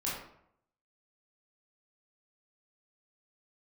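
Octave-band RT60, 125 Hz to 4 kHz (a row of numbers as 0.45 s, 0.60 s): 0.75 s, 0.70 s, 0.70 s, 0.70 s, 0.60 s, 0.45 s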